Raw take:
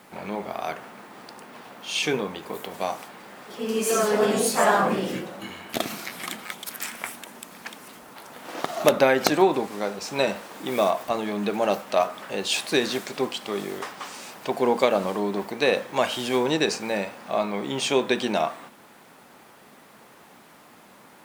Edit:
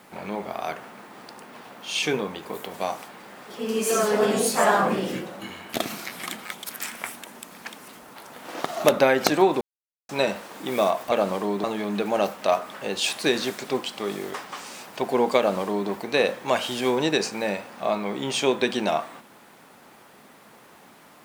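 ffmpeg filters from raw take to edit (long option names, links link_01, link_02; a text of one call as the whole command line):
ffmpeg -i in.wav -filter_complex "[0:a]asplit=5[link_01][link_02][link_03][link_04][link_05];[link_01]atrim=end=9.61,asetpts=PTS-STARTPTS,afade=type=out:start_time=9.606:duration=0.004:curve=hsin[link_06];[link_02]atrim=start=9.61:end=10.09,asetpts=PTS-STARTPTS,volume=0[link_07];[link_03]atrim=start=10.09:end=11.122,asetpts=PTS-STARTPTS,afade=type=in:duration=0.004:curve=hsin[link_08];[link_04]atrim=start=14.858:end=15.382[link_09];[link_05]atrim=start=11.118[link_10];[link_06][link_07][link_08]concat=n=3:v=0:a=1[link_11];[link_11][link_09]acrossfade=duration=0.004:curve1=hsin:curve2=hsin[link_12];[link_12][link_10]acrossfade=duration=0.004:curve1=hsin:curve2=hsin" out.wav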